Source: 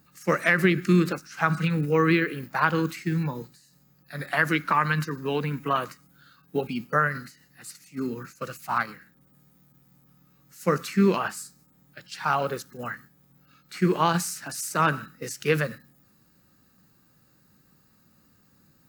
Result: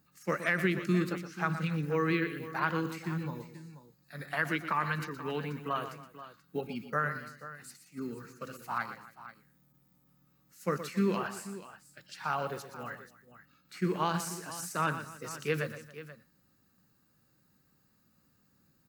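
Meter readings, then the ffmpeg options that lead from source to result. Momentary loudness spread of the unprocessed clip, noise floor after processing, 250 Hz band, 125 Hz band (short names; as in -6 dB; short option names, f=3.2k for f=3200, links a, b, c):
16 LU, -70 dBFS, -8.0 dB, -8.0 dB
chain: -af "aecho=1:1:120|277|483:0.282|0.1|0.188,volume=-8.5dB"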